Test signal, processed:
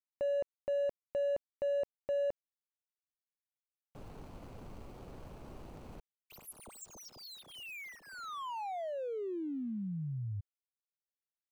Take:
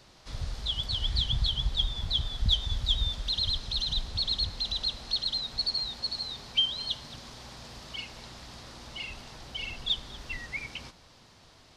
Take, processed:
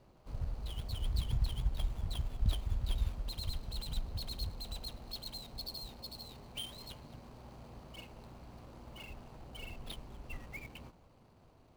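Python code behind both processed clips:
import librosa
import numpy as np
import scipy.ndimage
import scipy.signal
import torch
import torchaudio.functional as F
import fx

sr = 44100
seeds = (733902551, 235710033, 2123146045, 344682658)

y = scipy.signal.medfilt(x, 25)
y = F.gain(torch.from_numpy(y), -3.0).numpy()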